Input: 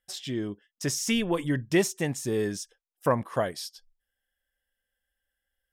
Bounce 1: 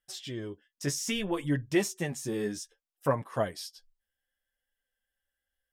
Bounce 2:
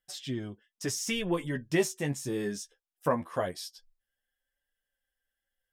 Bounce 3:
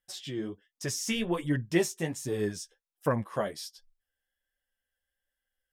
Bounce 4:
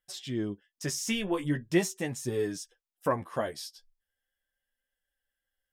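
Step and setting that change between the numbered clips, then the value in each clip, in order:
flange, rate: 0.63, 0.21, 1.3, 0.4 Hz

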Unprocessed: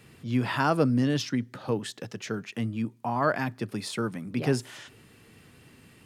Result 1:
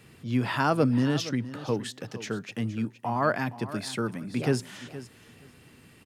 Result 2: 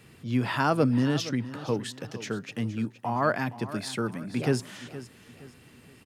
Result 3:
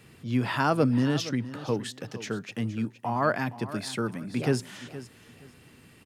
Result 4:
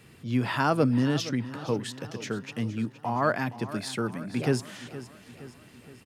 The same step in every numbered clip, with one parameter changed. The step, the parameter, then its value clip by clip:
feedback echo, feedback: 15, 35, 22, 53%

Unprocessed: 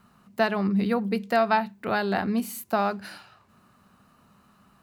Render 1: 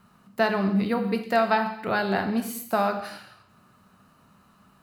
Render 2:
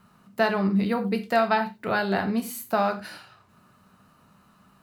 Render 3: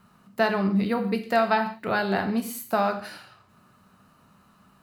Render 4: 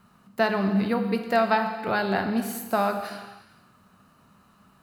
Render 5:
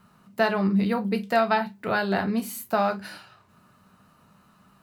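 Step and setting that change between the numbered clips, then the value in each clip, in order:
non-linear reverb, gate: 300, 130, 200, 530, 80 ms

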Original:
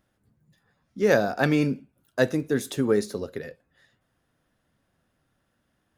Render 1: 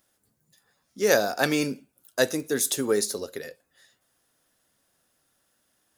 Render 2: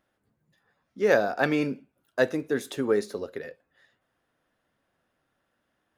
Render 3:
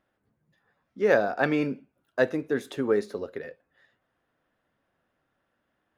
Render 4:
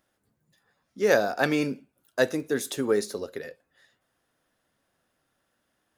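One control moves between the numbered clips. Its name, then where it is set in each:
tone controls, treble: +14, -6, -14, +3 dB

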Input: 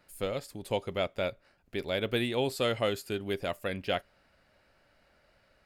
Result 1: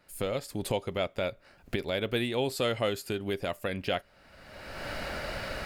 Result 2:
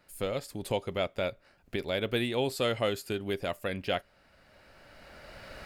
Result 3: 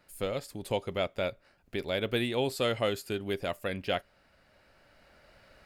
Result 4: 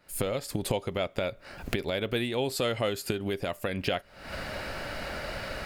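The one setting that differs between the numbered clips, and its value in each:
recorder AGC, rising by: 33, 13, 5.2, 83 dB/s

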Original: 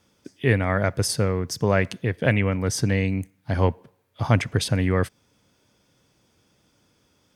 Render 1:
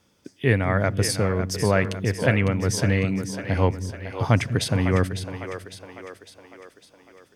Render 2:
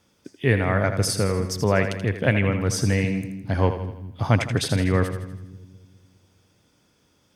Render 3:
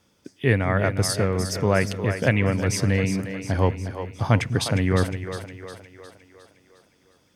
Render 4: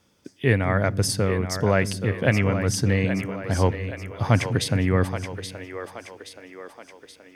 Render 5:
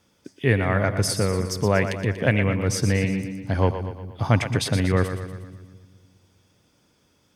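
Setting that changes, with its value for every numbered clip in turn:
split-band echo, highs: 553, 81, 357, 825, 119 ms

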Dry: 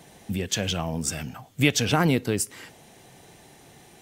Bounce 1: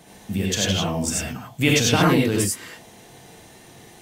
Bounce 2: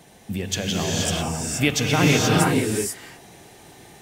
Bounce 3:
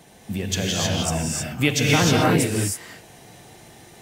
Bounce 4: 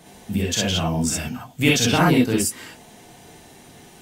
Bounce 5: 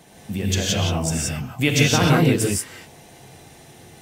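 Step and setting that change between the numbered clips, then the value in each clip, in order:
non-linear reverb, gate: 120, 510, 340, 80, 200 ms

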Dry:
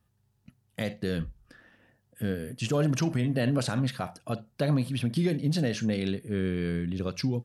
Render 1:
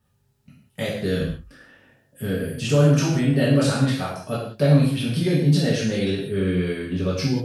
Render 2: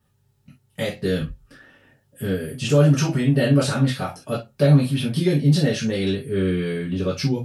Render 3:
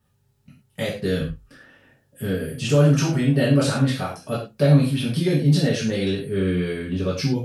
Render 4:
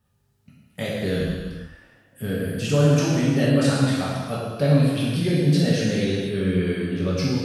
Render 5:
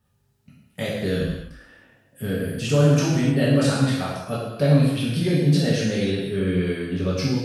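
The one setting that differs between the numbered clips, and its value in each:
non-linear reverb, gate: 220, 90, 140, 520, 340 ms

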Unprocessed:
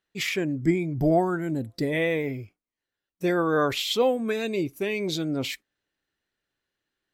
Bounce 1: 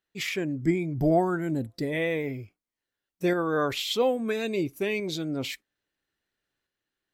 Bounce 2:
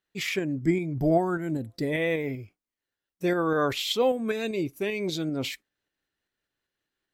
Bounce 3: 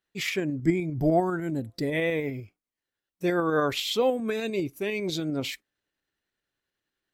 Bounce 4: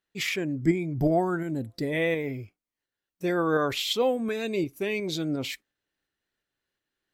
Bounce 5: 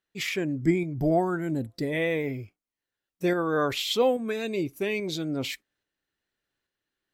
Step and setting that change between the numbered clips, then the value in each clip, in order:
tremolo, rate: 0.6, 5.1, 10, 2.8, 1.2 Hz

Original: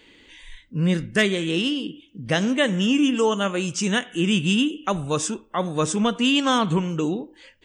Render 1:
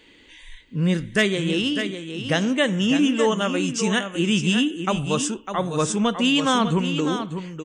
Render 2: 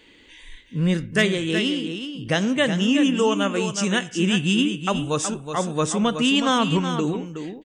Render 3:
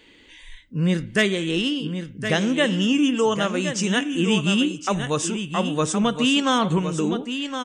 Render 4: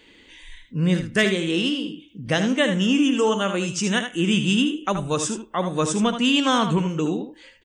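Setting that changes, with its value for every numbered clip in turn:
echo, time: 602, 370, 1066, 77 ms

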